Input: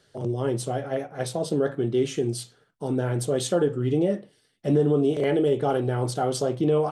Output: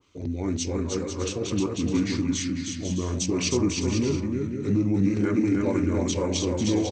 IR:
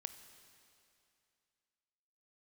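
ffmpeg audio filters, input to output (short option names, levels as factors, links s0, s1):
-filter_complex "[0:a]highshelf=f=6000:g=6,asetrate=31183,aresample=44100,atempo=1.41421,asplit=2[s0][s1];[s1]aecho=0:1:310|496|607.6|674.6|714.7:0.631|0.398|0.251|0.158|0.1[s2];[s0][s2]amix=inputs=2:normalize=0,adynamicequalizer=threshold=0.0112:dfrequency=1600:dqfactor=0.7:tfrequency=1600:tqfactor=0.7:attack=5:release=100:ratio=0.375:range=1.5:mode=boostabove:tftype=highshelf,volume=0.75"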